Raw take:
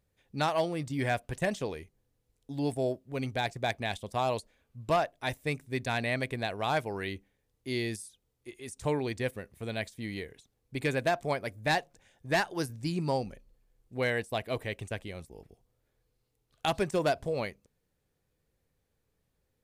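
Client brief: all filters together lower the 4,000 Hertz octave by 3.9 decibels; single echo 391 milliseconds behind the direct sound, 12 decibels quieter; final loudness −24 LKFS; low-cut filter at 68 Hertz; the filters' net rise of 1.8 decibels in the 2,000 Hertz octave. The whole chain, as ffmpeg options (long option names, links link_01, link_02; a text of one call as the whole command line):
ffmpeg -i in.wav -af "highpass=68,equalizer=frequency=2000:width_type=o:gain=3.5,equalizer=frequency=4000:width_type=o:gain=-6,aecho=1:1:391:0.251,volume=8.5dB" out.wav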